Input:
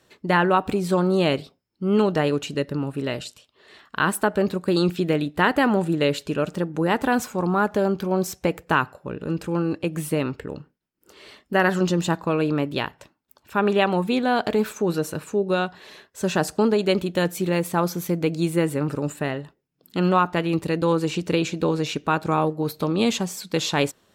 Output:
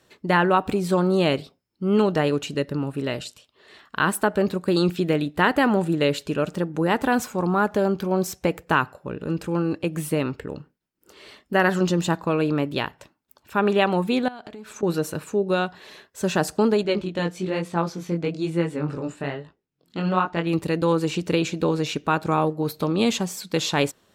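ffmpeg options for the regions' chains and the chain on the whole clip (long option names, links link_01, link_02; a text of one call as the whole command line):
ffmpeg -i in.wav -filter_complex "[0:a]asettb=1/sr,asplit=3[link_01][link_02][link_03];[link_01]atrim=end=14.284[link_04];[link_02]atrim=start=14.28:end=14.83,asetpts=PTS-STARTPTS,afade=type=in:duration=0.004:curve=qsin,afade=type=out:start_time=0.546:duration=0.004:curve=qsin,lowpass=10000,acompressor=threshold=-35dB:ratio=8:attack=3.2:release=140:knee=1:detection=peak,equalizer=frequency=480:width=6.1:gain=-5.5[link_05];[link_03]atrim=start=14.826[link_06];[link_04][link_05]acrossfade=duration=0.004:curve1=hsin:curve2=qsin[link_07];[link_07][link_06]acrossfade=duration=0.004:curve1=qsin:curve2=hsin,asettb=1/sr,asplit=3[link_08][link_09][link_10];[link_08]atrim=end=16.834[link_11];[link_09]atrim=start=16.83:end=20.47,asetpts=PTS-STARTPTS,afade=type=in:duration=0.004:curve=qsin,afade=type=out:start_time=3.636:duration=0.004:curve=qsin,lowpass=5800,flanger=delay=17.5:depth=6.3:speed=1.1[link_12];[link_10]atrim=start=20.466[link_13];[link_11][link_12]acrossfade=duration=0.004:curve1=hsin:curve2=qsin[link_14];[link_14][link_13]acrossfade=duration=0.004:curve1=qsin:curve2=hsin" out.wav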